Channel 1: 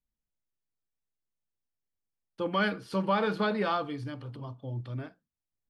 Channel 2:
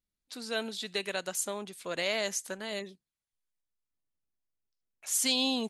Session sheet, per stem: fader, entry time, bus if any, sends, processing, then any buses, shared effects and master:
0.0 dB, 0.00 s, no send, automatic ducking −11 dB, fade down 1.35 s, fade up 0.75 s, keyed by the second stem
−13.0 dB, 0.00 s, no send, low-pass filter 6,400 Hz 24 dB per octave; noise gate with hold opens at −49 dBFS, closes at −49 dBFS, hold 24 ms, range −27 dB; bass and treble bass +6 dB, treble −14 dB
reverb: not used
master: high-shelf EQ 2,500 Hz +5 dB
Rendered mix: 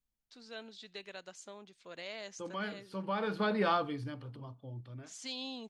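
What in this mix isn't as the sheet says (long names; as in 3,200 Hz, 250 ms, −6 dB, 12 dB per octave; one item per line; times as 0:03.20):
stem 2: missing bass and treble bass +6 dB, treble −14 dB
master: missing high-shelf EQ 2,500 Hz +5 dB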